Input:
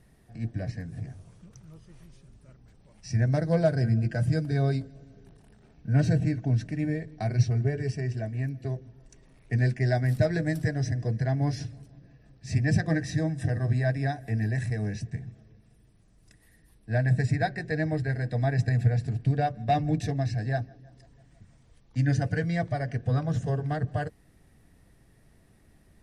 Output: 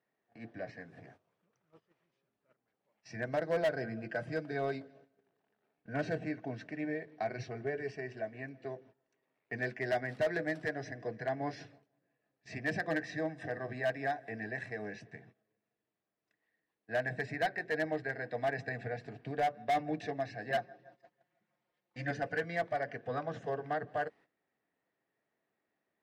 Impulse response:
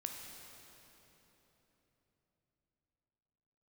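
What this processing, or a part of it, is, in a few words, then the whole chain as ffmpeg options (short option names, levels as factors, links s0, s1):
walkie-talkie: -filter_complex "[0:a]asettb=1/sr,asplit=3[s0][s1][s2];[s0]atrim=end=20.504[s3];[s1]atrim=start=20.5:end=22.11,asetpts=PTS-STARTPTS,afade=t=in:d=0.004:c=qsin,afade=t=out:st=1.606:d=0.004:c=qsin,aecho=1:1:5.6:0.93,atrim=end_sample=71001[s4];[s2]atrim=start=22.106[s5];[s3][s4]acrossfade=d=0.004:c1=hsin:c2=qsin[s6];[s6][s5]acrossfade=d=0.004:c1=qsin:c2=hsin,highpass=440,lowpass=2700,asoftclip=type=hard:threshold=0.0501,agate=range=0.178:threshold=0.00126:ratio=16:detection=peak"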